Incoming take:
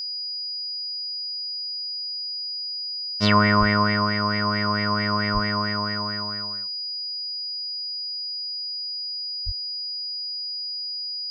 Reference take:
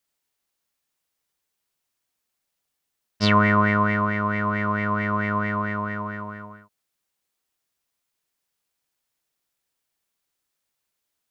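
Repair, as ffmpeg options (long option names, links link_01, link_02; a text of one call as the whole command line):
ffmpeg -i in.wav -filter_complex "[0:a]bandreject=frequency=4900:width=30,asplit=3[link_01][link_02][link_03];[link_01]afade=type=out:start_time=3.59:duration=0.02[link_04];[link_02]highpass=frequency=140:width=0.5412,highpass=frequency=140:width=1.3066,afade=type=in:start_time=3.59:duration=0.02,afade=type=out:start_time=3.71:duration=0.02[link_05];[link_03]afade=type=in:start_time=3.71:duration=0.02[link_06];[link_04][link_05][link_06]amix=inputs=3:normalize=0,asplit=3[link_07][link_08][link_09];[link_07]afade=type=out:start_time=5.33:duration=0.02[link_10];[link_08]highpass=frequency=140:width=0.5412,highpass=frequency=140:width=1.3066,afade=type=in:start_time=5.33:duration=0.02,afade=type=out:start_time=5.45:duration=0.02[link_11];[link_09]afade=type=in:start_time=5.45:duration=0.02[link_12];[link_10][link_11][link_12]amix=inputs=3:normalize=0,asplit=3[link_13][link_14][link_15];[link_13]afade=type=out:start_time=9.45:duration=0.02[link_16];[link_14]highpass=frequency=140:width=0.5412,highpass=frequency=140:width=1.3066,afade=type=in:start_time=9.45:duration=0.02,afade=type=out:start_time=9.57:duration=0.02[link_17];[link_15]afade=type=in:start_time=9.57:duration=0.02[link_18];[link_16][link_17][link_18]amix=inputs=3:normalize=0" out.wav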